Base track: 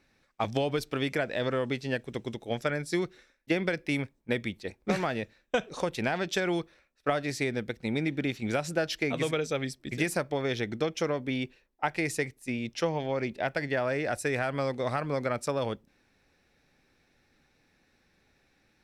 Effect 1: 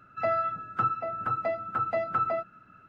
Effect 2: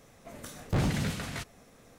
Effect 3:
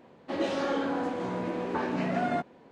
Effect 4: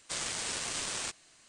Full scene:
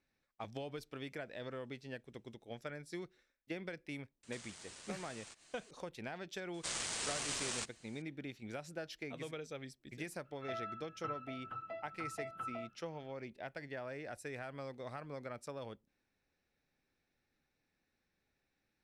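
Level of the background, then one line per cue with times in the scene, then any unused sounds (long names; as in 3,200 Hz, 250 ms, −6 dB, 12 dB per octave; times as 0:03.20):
base track −15.5 dB
0:04.23: mix in 4 −3 dB + downward compressor 4 to 1, threshold −49 dBFS
0:06.54: mix in 4 −4 dB
0:10.25: mix in 1 −16.5 dB + parametric band 3,100 Hz +14 dB 0.37 octaves
not used: 2, 3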